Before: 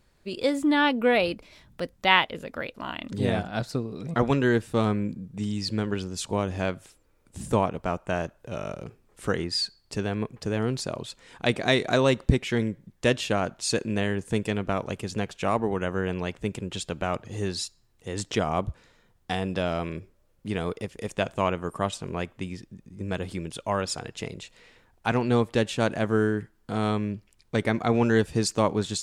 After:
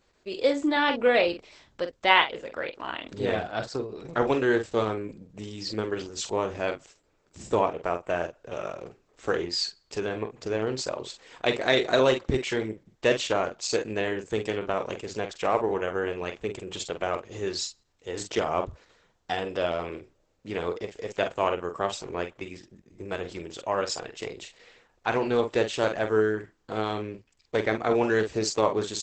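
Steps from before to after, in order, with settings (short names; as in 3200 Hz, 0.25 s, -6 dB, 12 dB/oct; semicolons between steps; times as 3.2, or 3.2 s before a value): resonant low shelf 280 Hz -7.5 dB, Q 1.5; doubler 46 ms -8 dB; Opus 10 kbps 48000 Hz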